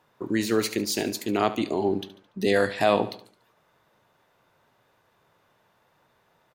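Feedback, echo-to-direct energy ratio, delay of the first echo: 44%, −14.0 dB, 72 ms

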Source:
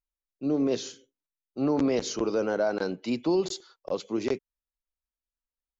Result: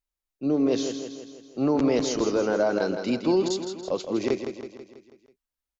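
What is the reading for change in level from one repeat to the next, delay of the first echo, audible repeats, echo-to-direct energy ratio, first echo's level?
−5.5 dB, 163 ms, 6, −6.5 dB, −8.0 dB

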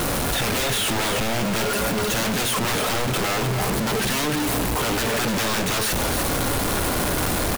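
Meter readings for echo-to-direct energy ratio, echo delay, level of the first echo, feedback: −7.5 dB, 299 ms, −7.5 dB, repeats not evenly spaced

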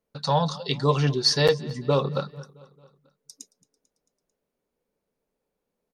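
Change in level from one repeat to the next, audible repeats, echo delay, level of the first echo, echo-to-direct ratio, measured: −4.5 dB, 3, 222 ms, −22.0 dB, −20.5 dB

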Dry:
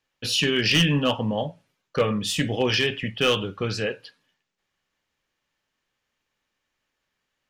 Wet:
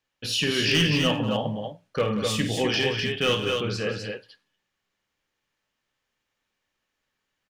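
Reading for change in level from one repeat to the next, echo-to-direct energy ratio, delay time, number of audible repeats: repeats not evenly spaced, −2.5 dB, 52 ms, 3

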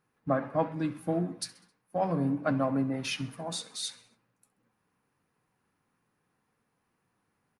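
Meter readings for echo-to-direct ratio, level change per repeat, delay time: −18.0 dB, −6.0 dB, 66 ms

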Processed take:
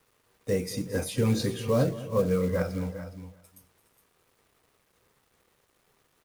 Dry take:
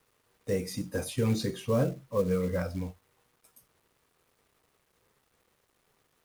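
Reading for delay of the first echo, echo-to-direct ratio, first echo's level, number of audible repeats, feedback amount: 218 ms, −10.0 dB, −16.5 dB, 4, repeats not evenly spaced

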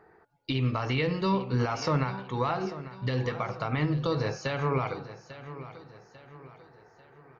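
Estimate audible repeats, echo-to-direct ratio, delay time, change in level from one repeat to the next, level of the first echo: 3, −13.5 dB, 845 ms, −7.5 dB, −14.5 dB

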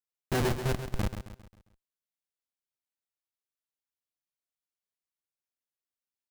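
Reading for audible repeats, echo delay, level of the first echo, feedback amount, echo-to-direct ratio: 4, 134 ms, −9.5 dB, 43%, −8.5 dB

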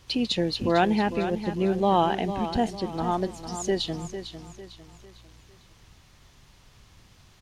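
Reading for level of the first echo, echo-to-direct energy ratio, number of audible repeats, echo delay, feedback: −10.5 dB, −10.0 dB, 3, 451 ms, 39%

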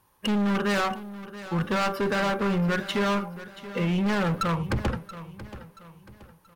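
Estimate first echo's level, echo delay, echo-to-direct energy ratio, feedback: −15.0 dB, 679 ms, −14.5 dB, 39%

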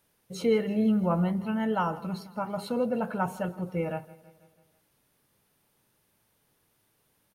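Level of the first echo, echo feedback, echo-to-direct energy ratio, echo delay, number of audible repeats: −20.0 dB, 57%, −18.5 dB, 163 ms, 4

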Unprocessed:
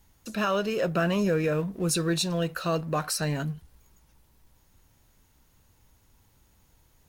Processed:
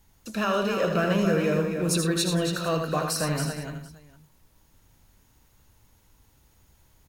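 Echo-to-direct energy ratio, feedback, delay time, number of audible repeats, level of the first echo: −2.0 dB, repeats not evenly spaced, 80 ms, 5, −6.0 dB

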